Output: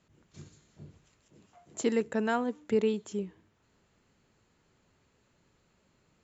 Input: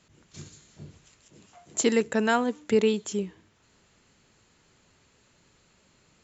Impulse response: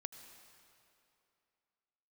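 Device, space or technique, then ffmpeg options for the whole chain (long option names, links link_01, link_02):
behind a face mask: -af "highshelf=frequency=2100:gain=-8,volume=-4.5dB"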